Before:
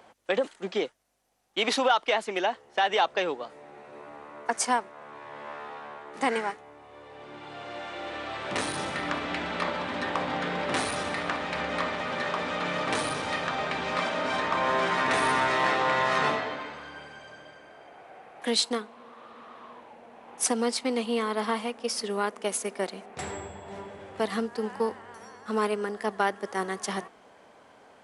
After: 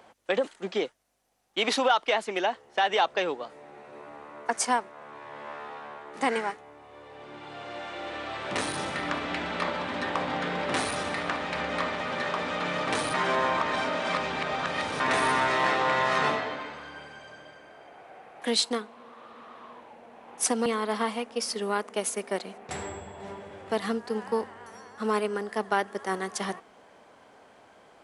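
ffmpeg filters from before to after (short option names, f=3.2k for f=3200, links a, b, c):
-filter_complex "[0:a]asplit=4[a][b][c][d];[a]atrim=end=13.142[e];[b]atrim=start=13.138:end=15.002,asetpts=PTS-STARTPTS,areverse[f];[c]atrim=start=14.998:end=20.662[g];[d]atrim=start=21.138[h];[e][f]acrossfade=d=0.004:c1=hsin:c2=hsin[i];[i][g]acrossfade=d=0.004:c1=hsin:c2=hsin[j];[j][h]acrossfade=d=0.004:c1=hsin:c2=hsin"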